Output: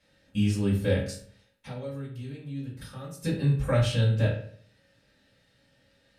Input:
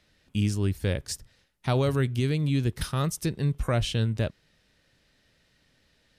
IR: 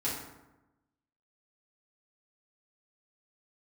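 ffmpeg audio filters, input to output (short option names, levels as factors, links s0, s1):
-filter_complex "[0:a]asettb=1/sr,asplit=3[s0][s1][s2];[s0]atrim=end=1.094[s3];[s1]atrim=start=1.09:end=3.24,asetpts=PTS-STARTPTS,afade=t=in:d=0.004:c=qsin,afade=t=out:st=2.146:d=0.004:c=qsin,acompressor=threshold=0.0126:ratio=10[s4];[s2]atrim=start=3.236[s5];[s3][s4]acrossfade=d=0.004:c1=hsin:c2=qsin[s6];[s6][s5]acrossfade=d=0.004:c1=qsin:c2=hsin[s7];[1:a]atrim=start_sample=2205,asetrate=83790,aresample=44100[s8];[s7][s8]afir=irnorm=-1:irlink=0"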